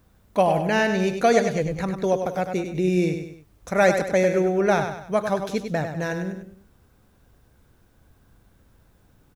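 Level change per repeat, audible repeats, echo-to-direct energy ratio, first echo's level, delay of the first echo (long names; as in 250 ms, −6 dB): −7.5 dB, 3, −6.5 dB, −7.5 dB, 99 ms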